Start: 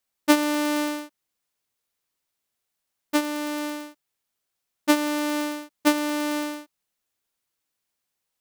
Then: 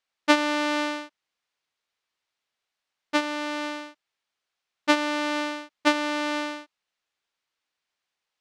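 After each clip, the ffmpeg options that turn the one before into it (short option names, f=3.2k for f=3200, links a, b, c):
-af "lowpass=4.3k,lowshelf=f=460:g=-11.5,volume=4dB"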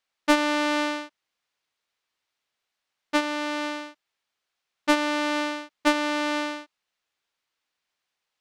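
-af "asoftclip=type=tanh:threshold=-7.5dB,volume=1.5dB"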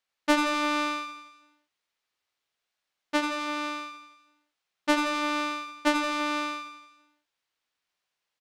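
-af "aecho=1:1:85|170|255|340|425|510|595:0.473|0.27|0.154|0.0876|0.0499|0.0285|0.0162,volume=-3dB"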